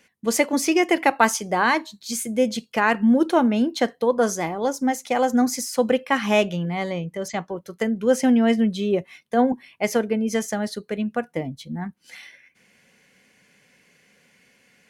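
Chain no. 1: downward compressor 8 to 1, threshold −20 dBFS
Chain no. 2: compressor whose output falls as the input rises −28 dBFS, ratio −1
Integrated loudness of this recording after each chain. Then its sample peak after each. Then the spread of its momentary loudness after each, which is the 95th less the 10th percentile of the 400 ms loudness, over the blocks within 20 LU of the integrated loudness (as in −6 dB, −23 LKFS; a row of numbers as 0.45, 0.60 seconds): −26.5, −27.5 LKFS; −9.5, −11.0 dBFS; 7, 8 LU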